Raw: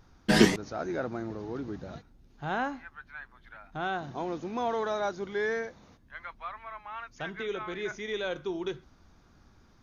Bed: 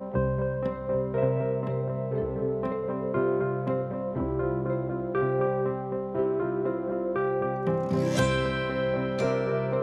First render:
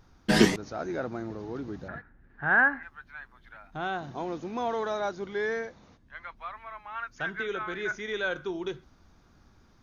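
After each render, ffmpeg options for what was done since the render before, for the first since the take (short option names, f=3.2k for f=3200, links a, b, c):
-filter_complex "[0:a]asettb=1/sr,asplit=3[a][b][c];[a]atrim=end=1.884[d];[b]atrim=start=1.88:end=2.83,asetpts=PTS-STARTPTS,afade=t=in:d=0.004:c=qsin,afade=t=out:st=0.946:d=0.004:c=qsin,lowpass=f=1.7k:t=q:w=10[e];[c]atrim=start=2.826[f];[d][e]acrossfade=d=0.004:c1=hsin:c2=qsin[g];[g][f]acrossfade=d=0.004:c1=qsin:c2=hsin,asettb=1/sr,asplit=3[h][i][j];[h]atrim=end=4.974[k];[i]atrim=start=4.97:end=6.37,asetpts=PTS-STARTPTS,afade=t=in:d=0.004:c=qsin,afade=t=out:st=1.396:d=0.004:c=qsin,lowpass=7.5k[l];[j]atrim=start=6.366[m];[k][l]acrossfade=d=0.004:c1=hsin:c2=qsin[n];[n][m]acrossfade=d=0.004:c1=qsin:c2=hsin,asettb=1/sr,asplit=3[o][p][q];[o]atrim=end=6.954[r];[p]atrim=start=6.95:end=8.51,asetpts=PTS-STARTPTS,afade=t=in:d=0.004:c=qsin,afade=t=out:st=1.556:d=0.004:c=qsin,equalizer=f=1.5k:w=3.2:g=9[s];[q]atrim=start=8.506[t];[r][s]acrossfade=d=0.004:c1=hsin:c2=qsin[u];[u][t]acrossfade=d=0.004:c1=qsin:c2=hsin"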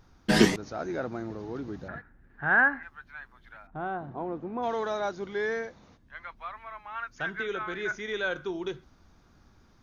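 -filter_complex "[0:a]asplit=3[a][b][c];[a]afade=t=out:st=3.66:d=0.02[d];[b]lowpass=1.3k,afade=t=in:st=3.66:d=0.02,afade=t=out:st=4.62:d=0.02[e];[c]afade=t=in:st=4.62:d=0.02[f];[d][e][f]amix=inputs=3:normalize=0"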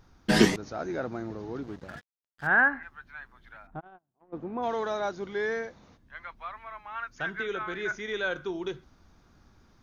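-filter_complex "[0:a]asettb=1/sr,asplit=3[a][b][c];[a]atrim=end=1.634[d];[b]atrim=start=1.63:end=2.47,asetpts=PTS-STARTPTS,afade=t=in:d=0.004:c=qsin,afade=t=out:st=0.836:d=0.004:c=qsin,aeval=exprs='sgn(val(0))*max(abs(val(0))-0.00447,0)':c=same[e];[c]atrim=start=2.466[f];[d][e]acrossfade=d=0.004:c1=hsin:c2=qsin[g];[g][f]acrossfade=d=0.004:c1=qsin:c2=hsin,asplit=3[h][i][j];[h]afade=t=out:st=3.79:d=0.02[k];[i]agate=range=-42dB:threshold=-30dB:ratio=16:release=100:detection=peak,afade=t=in:st=3.79:d=0.02,afade=t=out:st=4.32:d=0.02[l];[j]afade=t=in:st=4.32:d=0.02[m];[k][l][m]amix=inputs=3:normalize=0"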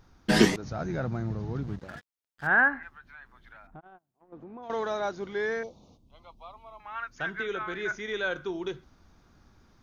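-filter_complex "[0:a]asettb=1/sr,asplit=3[a][b][c];[a]atrim=end=0.644[d];[b]atrim=start=0.64:end=1.79,asetpts=PTS-STARTPTS,afade=t=in:d=0.004:c=qsin,afade=t=out:st=1.146:d=0.004:c=qsin,lowshelf=f=220:t=q:w=1.5:g=10[e];[c]atrim=start=1.786[f];[d][e]acrossfade=d=0.004:c1=hsin:c2=qsin[g];[g][f]acrossfade=d=0.004:c1=qsin:c2=hsin,asettb=1/sr,asplit=3[h][i][j];[h]atrim=end=2.924[k];[i]atrim=start=2.92:end=4.7,asetpts=PTS-STARTPTS,afade=t=in:d=0.004:c=qsin,afade=t=out:st=1.776:d=0.004:c=qsin,acompressor=threshold=-46dB:ratio=2.5:attack=3.2:release=140:knee=1:detection=peak[l];[j]atrim=start=4.696[m];[k][l]acrossfade=d=0.004:c1=hsin:c2=qsin[n];[n][m]acrossfade=d=0.004:c1=qsin:c2=hsin,asettb=1/sr,asplit=3[o][p][q];[o]atrim=end=5.634[r];[p]atrim=start=5.63:end=6.8,asetpts=PTS-STARTPTS,afade=t=in:d=0.004:c=qsin,afade=t=out:st=1.166:d=0.004:c=qsin,asuperstop=centerf=1700:order=4:qfactor=0.78[s];[q]atrim=start=6.796[t];[r][s]acrossfade=d=0.004:c1=hsin:c2=qsin[u];[u][t]acrossfade=d=0.004:c1=qsin:c2=hsin"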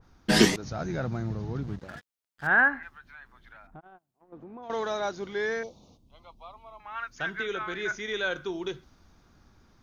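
-af "adynamicequalizer=threshold=0.00631:dfrequency=2500:dqfactor=0.7:tfrequency=2500:tqfactor=0.7:attack=5:release=100:ratio=0.375:range=2.5:mode=boostabove:tftype=highshelf"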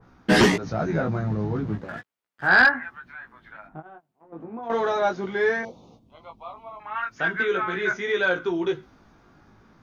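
-filter_complex "[0:a]flanger=delay=16:depth=3.2:speed=0.38,acrossover=split=110|2700[a][b][c];[b]aeval=exprs='0.282*sin(PI/2*2.24*val(0)/0.282)':c=same[d];[a][d][c]amix=inputs=3:normalize=0"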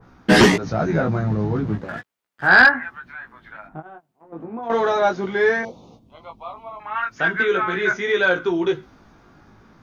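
-af "volume=4.5dB"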